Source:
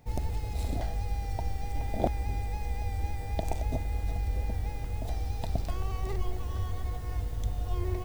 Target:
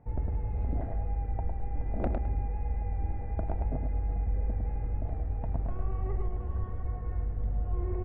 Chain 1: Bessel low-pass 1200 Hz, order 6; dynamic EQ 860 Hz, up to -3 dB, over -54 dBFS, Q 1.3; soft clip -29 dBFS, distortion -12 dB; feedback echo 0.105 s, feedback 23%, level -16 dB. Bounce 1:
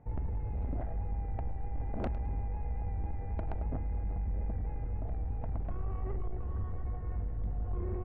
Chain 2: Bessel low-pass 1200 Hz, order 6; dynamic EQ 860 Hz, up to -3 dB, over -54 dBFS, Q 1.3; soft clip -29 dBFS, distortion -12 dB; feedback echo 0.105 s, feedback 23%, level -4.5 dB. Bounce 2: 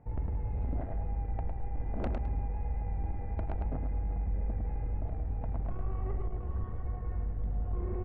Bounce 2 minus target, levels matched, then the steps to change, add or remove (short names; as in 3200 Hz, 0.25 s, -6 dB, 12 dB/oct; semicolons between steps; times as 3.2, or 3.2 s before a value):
soft clip: distortion +9 dB
change: soft clip -21.5 dBFS, distortion -21 dB